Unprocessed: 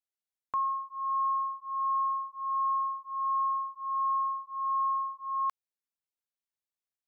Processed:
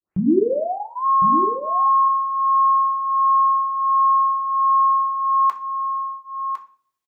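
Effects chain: tape start at the beginning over 1.05 s; echo 1.056 s -8 dB; on a send at -1 dB: reverb RT60 0.45 s, pre-delay 3 ms; on the sum: gain +7 dB

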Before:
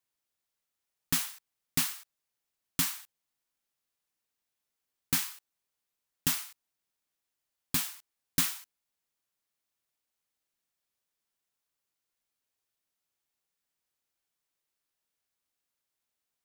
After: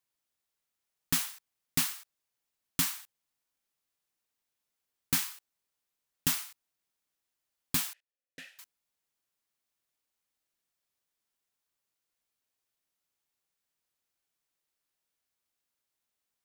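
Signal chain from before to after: 7.93–8.59 vowel filter e

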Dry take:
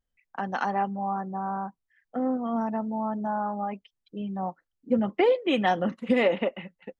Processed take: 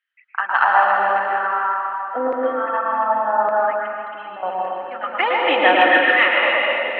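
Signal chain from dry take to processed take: speaker cabinet 280–3500 Hz, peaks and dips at 290 Hz +9 dB, 440 Hz -7 dB, 780 Hz -4 dB, 1300 Hz +6 dB, 1800 Hz +7 dB, 2800 Hz +5 dB; split-band echo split 1400 Hz, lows 0.11 s, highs 0.274 s, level -4 dB; LFO high-pass saw down 0.86 Hz 430–2000 Hz; 3.71–4.43 compressor, threshold -41 dBFS, peak gain reduction 13.5 dB; reverb RT60 2.2 s, pre-delay 0.106 s, DRR -1 dB; gain +5 dB

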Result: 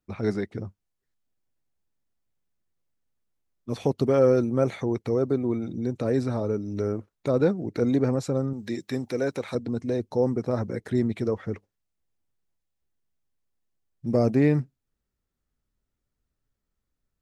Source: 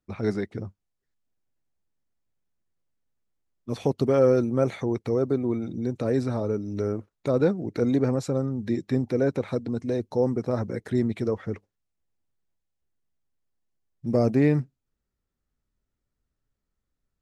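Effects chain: 8.53–9.55 tilt +2.5 dB/oct

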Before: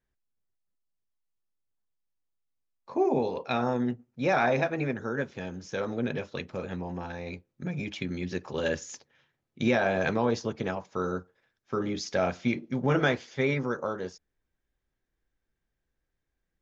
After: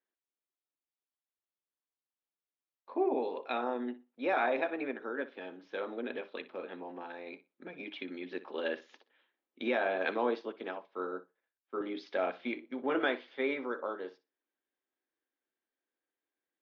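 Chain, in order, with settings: elliptic band-pass 280–3600 Hz, stop band 40 dB; flutter echo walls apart 10.4 m, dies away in 0.23 s; 9.98–11.81 three-band expander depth 70%; gain -4.5 dB

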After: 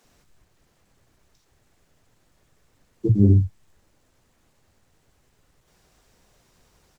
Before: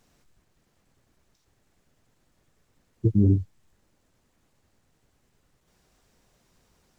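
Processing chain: bands offset in time highs, lows 40 ms, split 220 Hz; gain +5 dB

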